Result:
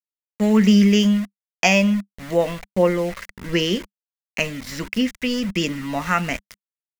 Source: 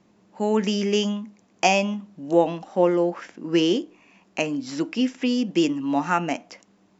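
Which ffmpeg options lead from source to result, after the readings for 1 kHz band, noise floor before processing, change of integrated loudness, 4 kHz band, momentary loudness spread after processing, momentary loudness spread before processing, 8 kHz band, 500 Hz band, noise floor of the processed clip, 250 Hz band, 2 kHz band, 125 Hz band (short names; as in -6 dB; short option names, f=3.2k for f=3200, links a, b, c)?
-1.5 dB, -61 dBFS, +3.5 dB, +4.0 dB, 13 LU, 12 LU, n/a, +0.5 dB, under -85 dBFS, +4.5 dB, +6.0 dB, +8.5 dB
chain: -af "aeval=exprs='val(0)*gte(abs(val(0)),0.0188)':c=same,asubboost=boost=8:cutoff=73,aphaser=in_gain=1:out_gain=1:delay=2:decay=0.22:speed=1.4:type=triangular,equalizer=f=200:t=o:w=0.33:g=11,equalizer=f=315:t=o:w=0.33:g=-9,equalizer=f=800:t=o:w=0.33:g=-10,equalizer=f=2k:t=o:w=0.33:g=9,volume=3dB"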